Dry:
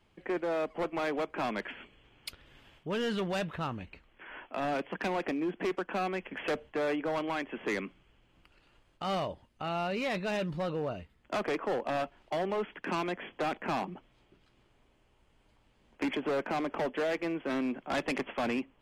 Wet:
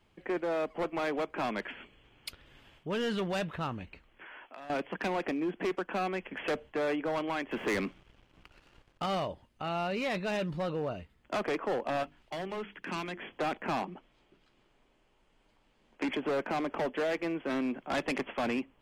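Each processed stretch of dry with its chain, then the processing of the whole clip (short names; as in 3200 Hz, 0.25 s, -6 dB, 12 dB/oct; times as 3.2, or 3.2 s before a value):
4.26–4.7 low shelf 320 Hz -11 dB + compressor 4:1, threshold -45 dBFS
7.51–9.06 high shelf 8300 Hz -11 dB + sample leveller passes 2
12.03–13.21 bell 590 Hz -7 dB 2.1 oct + notches 50/100/150/200/250/300/350/400/450 Hz
13.82–16.09 LPF 9300 Hz + bell 80 Hz -14.5 dB 1 oct
whole clip: dry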